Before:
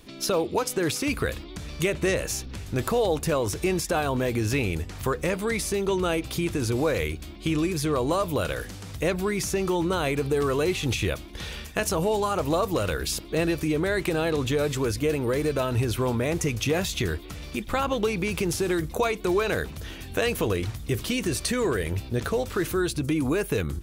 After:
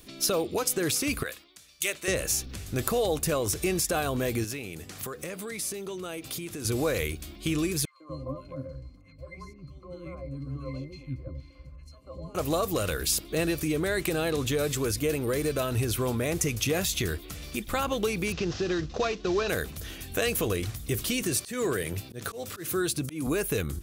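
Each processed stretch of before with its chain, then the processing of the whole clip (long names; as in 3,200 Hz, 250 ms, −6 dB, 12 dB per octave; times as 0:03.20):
0:01.23–0:02.08: high-pass filter 1,100 Hz 6 dB per octave + multiband upward and downward expander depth 100%
0:04.44–0:06.65: high-pass filter 130 Hz + downward compressor 2.5 to 1, threshold −34 dBFS
0:07.85–0:12.35: volume swells 139 ms + resonances in every octave C, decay 0.12 s + three-band delay without the direct sound highs, mids, lows 150/240 ms, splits 400/1,600 Hz
0:18.32–0:19.49: variable-slope delta modulation 32 kbit/s + notch filter 2,200 Hz, Q 10
0:21.22–0:23.27: high-pass filter 94 Hz 24 dB per octave + volume swells 169 ms
whole clip: high-shelf EQ 6,200 Hz +11 dB; notch filter 920 Hz, Q 8.4; level −3 dB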